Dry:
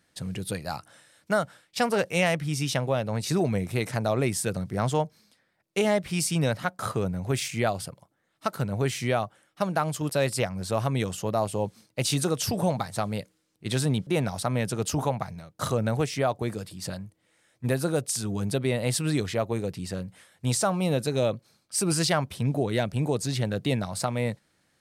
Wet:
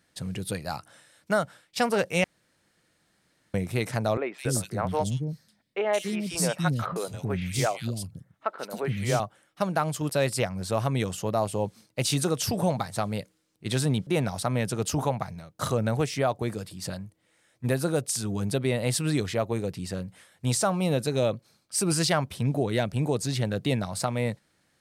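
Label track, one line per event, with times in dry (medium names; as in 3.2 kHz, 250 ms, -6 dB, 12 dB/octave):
2.240000	3.540000	room tone
4.170000	9.200000	three bands offset in time mids, highs, lows 170/280 ms, splits 320/2600 Hz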